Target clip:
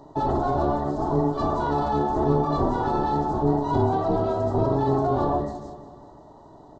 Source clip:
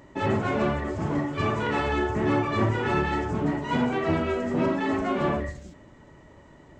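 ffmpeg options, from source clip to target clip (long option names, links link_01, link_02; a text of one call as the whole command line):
ffmpeg -i in.wav -filter_complex "[0:a]firequalizer=gain_entry='entry(150,0);entry(290,13);entry(440,-7);entry(700,13);entry(2300,-25);entry(3900,3);entry(7700,-6)':delay=0.05:min_phase=1,acrossover=split=310[link_01][link_02];[link_01]aeval=exprs='val(0)*sin(2*PI*140*n/s)':channel_layout=same[link_03];[link_02]alimiter=limit=-18dB:level=0:latency=1:release=11[link_04];[link_03][link_04]amix=inputs=2:normalize=0,aecho=1:1:184|368|552|736|920:0.178|0.0996|0.0558|0.0312|0.0175" out.wav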